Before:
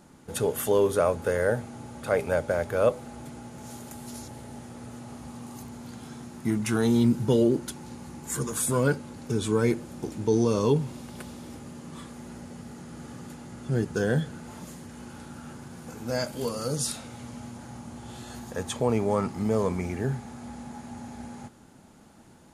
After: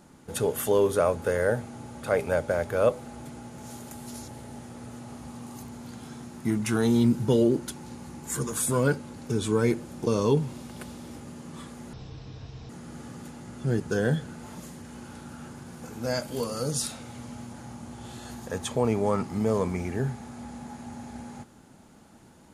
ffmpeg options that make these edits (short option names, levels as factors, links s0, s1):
-filter_complex "[0:a]asplit=4[s0][s1][s2][s3];[s0]atrim=end=10.072[s4];[s1]atrim=start=10.458:end=12.324[s5];[s2]atrim=start=12.32:end=12.74,asetpts=PTS-STARTPTS,asetrate=24255,aresample=44100,atrim=end_sample=33676,asetpts=PTS-STARTPTS[s6];[s3]atrim=start=12.736[s7];[s4][s5]acrossfade=d=0.004:c1=hsin:c2=hsin[s8];[s8][s6]acrossfade=d=0.004:c1=hsin:c2=hsin[s9];[s9][s7]acrossfade=d=0.004:c1=hsin:c2=hsin"